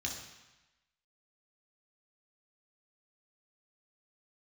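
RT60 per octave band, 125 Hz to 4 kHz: 1.0, 1.0, 0.95, 1.1, 1.2, 1.1 seconds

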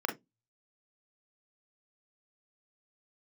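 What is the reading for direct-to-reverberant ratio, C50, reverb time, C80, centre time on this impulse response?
2.0 dB, 13.0 dB, 0.15 s, 24.5 dB, 16 ms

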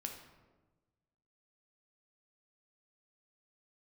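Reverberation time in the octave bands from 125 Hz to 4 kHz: 1.7, 1.5, 1.4, 1.1, 0.90, 0.70 seconds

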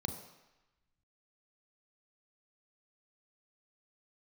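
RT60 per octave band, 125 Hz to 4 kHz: 0.85, 0.85, 0.95, 1.1, 1.2, 1.0 seconds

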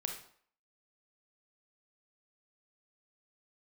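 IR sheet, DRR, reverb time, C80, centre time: 3.0 dB, 0.55 s, 10.5 dB, 24 ms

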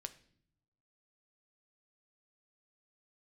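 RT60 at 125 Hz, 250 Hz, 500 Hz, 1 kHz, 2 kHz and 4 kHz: 1.3, 1.1, 0.70, 0.55, 0.55, 0.55 seconds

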